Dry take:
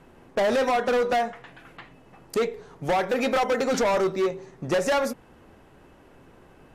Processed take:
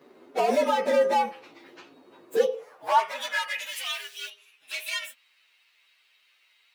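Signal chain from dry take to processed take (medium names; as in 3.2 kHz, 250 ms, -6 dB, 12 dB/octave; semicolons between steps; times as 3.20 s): frequency axis rescaled in octaves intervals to 116%; 3.66–4.30 s: word length cut 8-bit, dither none; high-pass sweep 330 Hz -> 2.7 kHz, 2.27–3.73 s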